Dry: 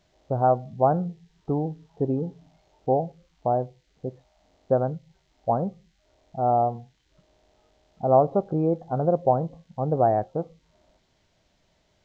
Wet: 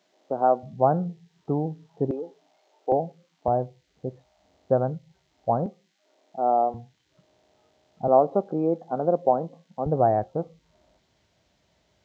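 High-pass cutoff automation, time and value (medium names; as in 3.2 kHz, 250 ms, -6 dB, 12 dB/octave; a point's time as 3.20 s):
high-pass 24 dB/octave
220 Hz
from 0.63 s 110 Hz
from 2.11 s 350 Hz
from 2.92 s 160 Hz
from 3.48 s 64 Hz
from 5.66 s 240 Hz
from 6.74 s 87 Hz
from 8.08 s 190 Hz
from 9.86 s 49 Hz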